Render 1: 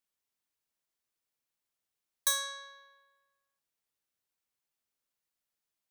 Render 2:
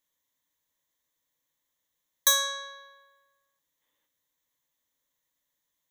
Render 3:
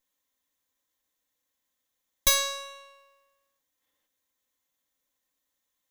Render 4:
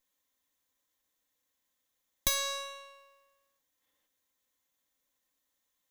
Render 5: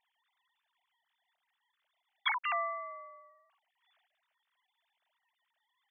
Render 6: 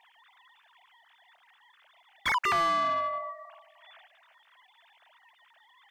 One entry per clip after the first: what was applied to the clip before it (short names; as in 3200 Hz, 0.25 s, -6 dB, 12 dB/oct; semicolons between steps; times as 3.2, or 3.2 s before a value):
spectral gain 3.81–4.07, 210–3700 Hz +7 dB; ripple EQ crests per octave 1.1, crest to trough 10 dB; gain +5.5 dB
minimum comb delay 3.8 ms; gain +1.5 dB
compressor 3:1, threshold -28 dBFS, peak gain reduction 8.5 dB
sine-wave speech
analogue delay 0.309 s, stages 2048, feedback 32%, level -20 dB; overdrive pedal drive 30 dB, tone 2100 Hz, clips at -18.5 dBFS